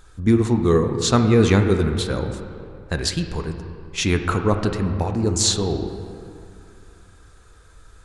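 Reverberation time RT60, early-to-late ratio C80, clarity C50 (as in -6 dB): 2.6 s, 8.5 dB, 7.5 dB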